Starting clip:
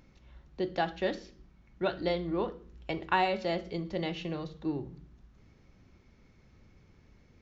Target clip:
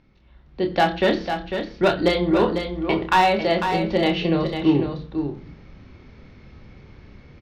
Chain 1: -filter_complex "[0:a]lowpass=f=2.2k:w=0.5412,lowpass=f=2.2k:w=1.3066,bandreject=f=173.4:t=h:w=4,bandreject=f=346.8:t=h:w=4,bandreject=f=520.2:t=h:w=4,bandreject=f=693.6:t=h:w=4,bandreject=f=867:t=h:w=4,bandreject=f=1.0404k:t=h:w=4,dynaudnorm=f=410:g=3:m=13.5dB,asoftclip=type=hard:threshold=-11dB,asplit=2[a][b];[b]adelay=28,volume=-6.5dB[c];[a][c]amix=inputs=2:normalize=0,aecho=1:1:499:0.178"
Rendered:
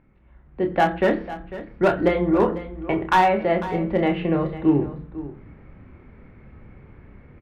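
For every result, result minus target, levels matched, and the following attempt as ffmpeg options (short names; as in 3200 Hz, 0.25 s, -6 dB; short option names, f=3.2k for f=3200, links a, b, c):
4000 Hz band -10.0 dB; echo-to-direct -7.5 dB
-filter_complex "[0:a]lowpass=f=4.7k:w=0.5412,lowpass=f=4.7k:w=1.3066,bandreject=f=173.4:t=h:w=4,bandreject=f=346.8:t=h:w=4,bandreject=f=520.2:t=h:w=4,bandreject=f=693.6:t=h:w=4,bandreject=f=867:t=h:w=4,bandreject=f=1.0404k:t=h:w=4,dynaudnorm=f=410:g=3:m=13.5dB,asoftclip=type=hard:threshold=-11dB,asplit=2[a][b];[b]adelay=28,volume=-6.5dB[c];[a][c]amix=inputs=2:normalize=0,aecho=1:1:499:0.178"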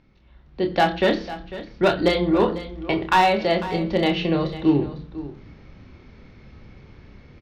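echo-to-direct -7.5 dB
-filter_complex "[0:a]lowpass=f=4.7k:w=0.5412,lowpass=f=4.7k:w=1.3066,bandreject=f=173.4:t=h:w=4,bandreject=f=346.8:t=h:w=4,bandreject=f=520.2:t=h:w=4,bandreject=f=693.6:t=h:w=4,bandreject=f=867:t=h:w=4,bandreject=f=1.0404k:t=h:w=4,dynaudnorm=f=410:g=3:m=13.5dB,asoftclip=type=hard:threshold=-11dB,asplit=2[a][b];[b]adelay=28,volume=-6.5dB[c];[a][c]amix=inputs=2:normalize=0,aecho=1:1:499:0.422"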